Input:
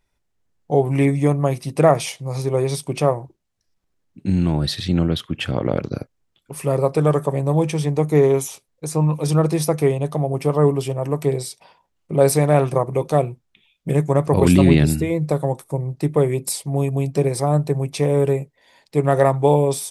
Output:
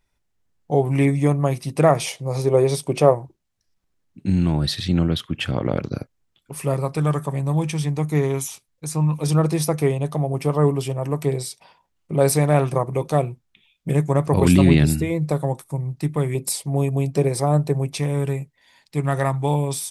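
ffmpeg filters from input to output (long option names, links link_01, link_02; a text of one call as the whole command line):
ffmpeg -i in.wav -af "asetnsamples=nb_out_samples=441:pad=0,asendcmd='2.02 equalizer g 4.5;3.15 equalizer g -3;6.74 equalizer g -10;9.21 equalizer g -3.5;15.62 equalizer g -10;16.35 equalizer g -1;17.98 equalizer g -11',equalizer=frequency=490:width_type=o:width=1.4:gain=-2.5" out.wav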